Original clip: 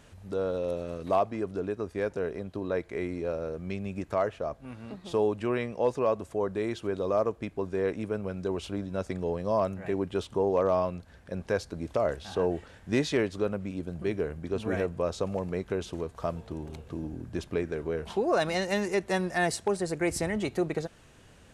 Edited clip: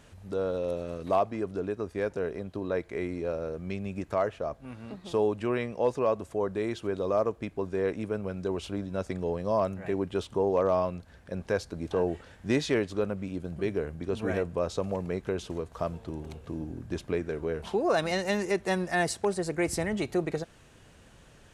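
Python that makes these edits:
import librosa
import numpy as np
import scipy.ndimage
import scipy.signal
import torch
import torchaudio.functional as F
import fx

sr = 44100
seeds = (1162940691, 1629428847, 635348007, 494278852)

y = fx.edit(x, sr, fx.cut(start_s=11.91, length_s=0.43), tone=tone)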